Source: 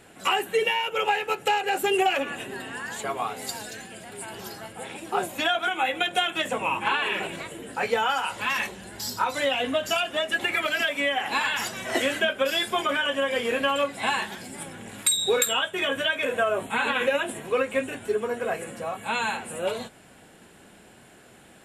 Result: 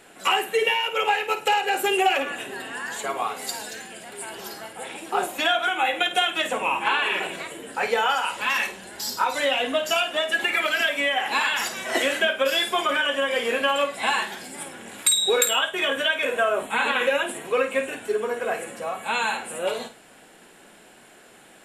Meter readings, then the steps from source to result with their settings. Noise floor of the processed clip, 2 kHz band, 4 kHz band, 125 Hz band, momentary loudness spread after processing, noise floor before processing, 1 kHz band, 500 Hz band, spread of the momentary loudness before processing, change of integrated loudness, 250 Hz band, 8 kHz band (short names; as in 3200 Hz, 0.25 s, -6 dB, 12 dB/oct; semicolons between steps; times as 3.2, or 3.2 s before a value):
-51 dBFS, +3.0 dB, +3.0 dB, n/a, 12 LU, -52 dBFS, +2.5 dB, +1.5 dB, 12 LU, +2.5 dB, -1.0 dB, +3.0 dB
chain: bell 85 Hz -14 dB 2.2 oct; on a send: flutter echo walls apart 8.9 m, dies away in 0.3 s; on the sum: gain +2.5 dB